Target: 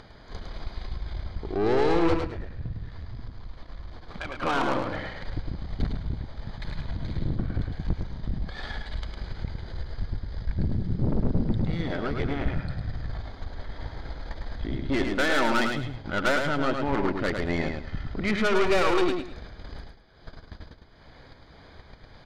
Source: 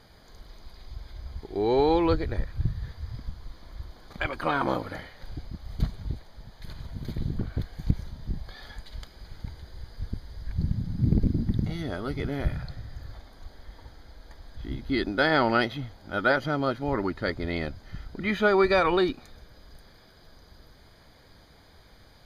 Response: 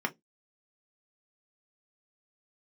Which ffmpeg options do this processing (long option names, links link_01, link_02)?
-filter_complex "[0:a]asettb=1/sr,asplit=3[link_01][link_02][link_03];[link_01]atrim=end=2.164[link_04];[link_02]atrim=start=2.16:end=4.41,asetpts=PTS-STARTPTS,afade=type=in:duration=0.004:curve=qsin,afade=type=out:start_time=2.246:duration=0.004:curve=qsin,aeval=exprs='if(lt(val(0),0),0.251*val(0),val(0))':channel_layout=same[link_05];[link_03]atrim=start=4.406[link_06];[link_04][link_05]acrossfade=duration=0.004:curve1=hsin:curve2=qsin[link_07];[link_07][link_06]acrossfade=duration=0.004:curve1=qsin:curve2=hsin,lowpass=3700,agate=range=-27dB:threshold=-48dB:ratio=16:detection=peak,acompressor=mode=upward:threshold=-28dB:ratio=2.5,aeval=exprs='(tanh(22.4*val(0)+0.7)-tanh(0.7))/22.4':channel_layout=same,aecho=1:1:106|212|318:0.562|0.135|0.0324,volume=6dB"